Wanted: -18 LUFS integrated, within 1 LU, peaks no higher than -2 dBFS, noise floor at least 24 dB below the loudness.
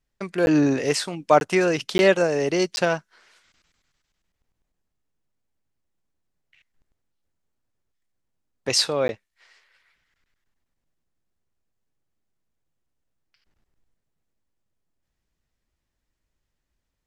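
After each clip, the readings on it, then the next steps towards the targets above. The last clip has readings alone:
dropouts 5; longest dropout 11 ms; loudness -21.5 LUFS; peak level -3.0 dBFS; loudness target -18.0 LUFS
-> interpolate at 0.46/1.40/1.98/2.76/9.08 s, 11 ms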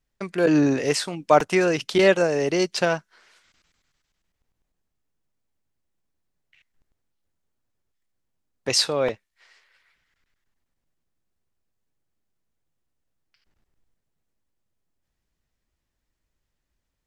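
dropouts 0; loudness -21.5 LUFS; peak level -3.0 dBFS; loudness target -18.0 LUFS
-> trim +3.5 dB; peak limiter -2 dBFS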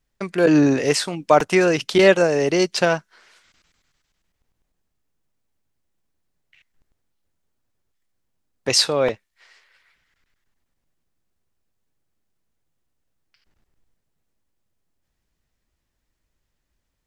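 loudness -18.0 LUFS; peak level -2.0 dBFS; noise floor -76 dBFS

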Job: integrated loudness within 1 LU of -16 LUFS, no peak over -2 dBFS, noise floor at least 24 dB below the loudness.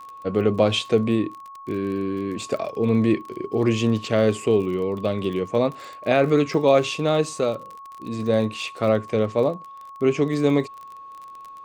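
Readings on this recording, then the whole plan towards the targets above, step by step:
tick rate 31 per s; steady tone 1.1 kHz; tone level -38 dBFS; loudness -22.5 LUFS; peak level -6.0 dBFS; loudness target -16.0 LUFS
-> de-click; band-stop 1.1 kHz, Q 30; trim +6.5 dB; peak limiter -2 dBFS

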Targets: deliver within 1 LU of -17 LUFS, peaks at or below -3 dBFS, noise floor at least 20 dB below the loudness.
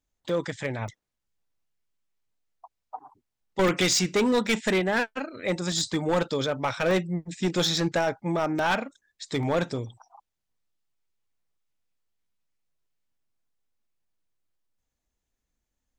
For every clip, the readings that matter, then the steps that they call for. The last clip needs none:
clipped samples 1.0%; clipping level -18.5 dBFS; dropouts 8; longest dropout 1.3 ms; loudness -26.5 LUFS; peak level -18.5 dBFS; loudness target -17.0 LUFS
-> clip repair -18.5 dBFS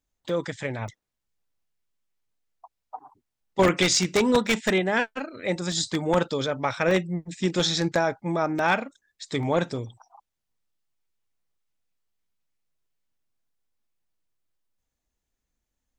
clipped samples 0.0%; dropouts 8; longest dropout 1.3 ms
-> interpolate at 0.29/0.88/3.68/4.47/5.72/6.91/8.59/9.43 s, 1.3 ms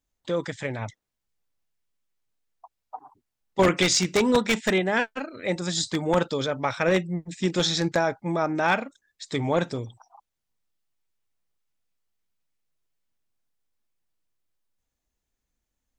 dropouts 0; loudness -25.0 LUFS; peak level -9.5 dBFS; loudness target -17.0 LUFS
-> trim +8 dB; peak limiter -3 dBFS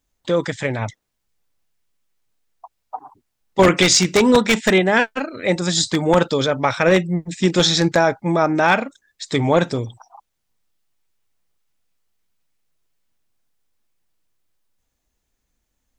loudness -17.5 LUFS; peak level -3.0 dBFS; noise floor -75 dBFS

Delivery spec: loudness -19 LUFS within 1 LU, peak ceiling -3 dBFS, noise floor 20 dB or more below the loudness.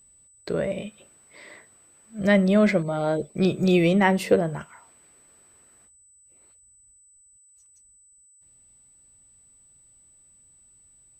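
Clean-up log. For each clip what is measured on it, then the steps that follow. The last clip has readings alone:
steady tone 8 kHz; tone level -54 dBFS; loudness -22.5 LUFS; peak level -5.0 dBFS; loudness target -19.0 LUFS
-> band-stop 8 kHz, Q 30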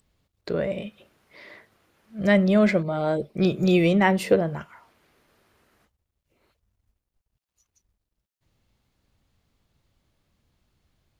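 steady tone not found; loudness -22.5 LUFS; peak level -5.0 dBFS; loudness target -19.0 LUFS
-> trim +3.5 dB; peak limiter -3 dBFS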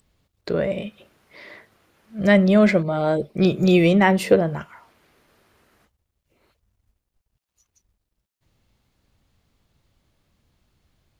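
loudness -19.0 LUFS; peak level -3.0 dBFS; noise floor -80 dBFS

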